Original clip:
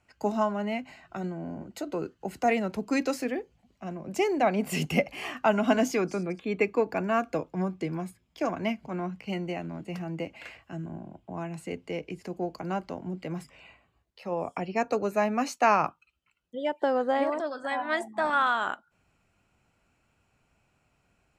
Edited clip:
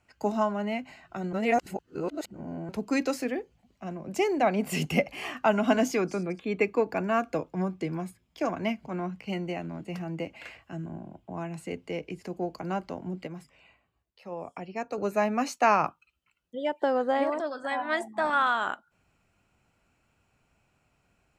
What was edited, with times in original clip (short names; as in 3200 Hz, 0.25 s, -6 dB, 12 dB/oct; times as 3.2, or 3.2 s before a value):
1.33–2.69 reverse
13.27–14.98 gain -6.5 dB